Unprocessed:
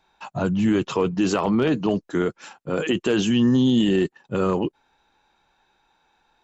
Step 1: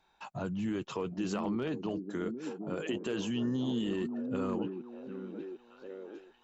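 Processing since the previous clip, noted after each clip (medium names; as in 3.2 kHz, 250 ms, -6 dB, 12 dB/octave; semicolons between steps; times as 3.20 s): compression 1.5:1, threshold -40 dBFS, peak gain reduction 8.5 dB; repeats whose band climbs or falls 751 ms, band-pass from 260 Hz, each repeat 0.7 oct, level -4 dB; trim -6 dB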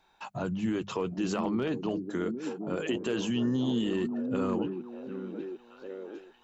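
hum notches 50/100/150/200 Hz; trim +4 dB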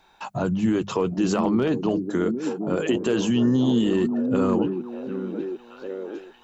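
dynamic bell 2.5 kHz, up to -4 dB, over -53 dBFS, Q 0.83; trim +8.5 dB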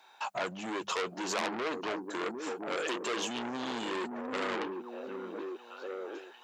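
high-pass 550 Hz 12 dB/octave; transformer saturation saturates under 4 kHz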